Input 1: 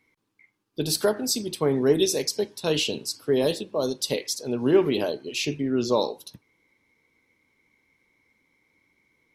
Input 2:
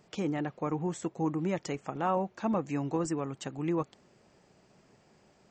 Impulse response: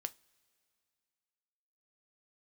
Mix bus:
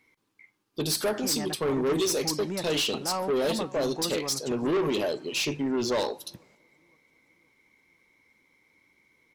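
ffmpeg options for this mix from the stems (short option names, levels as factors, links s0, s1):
-filter_complex "[0:a]acontrast=53,volume=0.501,asplit=2[s0][s1];[s1]volume=0.531[s2];[1:a]adelay=1050,volume=1.12,asplit=2[s3][s4];[s4]volume=0.0944[s5];[2:a]atrim=start_sample=2205[s6];[s2][s6]afir=irnorm=-1:irlink=0[s7];[s5]aecho=0:1:523|1046|1569|2092|2615|3138|3661|4184:1|0.53|0.281|0.149|0.0789|0.0418|0.0222|0.0117[s8];[s0][s3][s7][s8]amix=inputs=4:normalize=0,lowshelf=f=350:g=-4,asoftclip=type=tanh:threshold=0.0794"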